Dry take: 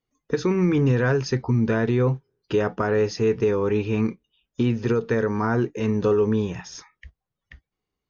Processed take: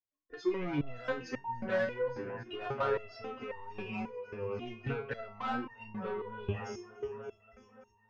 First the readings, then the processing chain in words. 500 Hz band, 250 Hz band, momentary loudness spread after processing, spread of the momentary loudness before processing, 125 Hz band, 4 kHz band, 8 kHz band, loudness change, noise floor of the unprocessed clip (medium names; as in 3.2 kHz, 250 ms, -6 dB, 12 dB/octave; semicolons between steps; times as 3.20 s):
-13.5 dB, -17.0 dB, 10 LU, 9 LU, -19.0 dB, -10.5 dB, no reading, -14.5 dB, -85 dBFS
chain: spectral noise reduction 20 dB; three-band isolator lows -16 dB, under 320 Hz, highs -16 dB, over 2.9 kHz; in parallel at +3 dB: compressor with a negative ratio -28 dBFS, ratio -1; on the sum: bass shelf 150 Hz +12 dB; multi-head delay 286 ms, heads all three, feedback 53%, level -20.5 dB; saturation -15.5 dBFS, distortion -15 dB; resonator arpeggio 3.7 Hz 100–920 Hz; trim +2.5 dB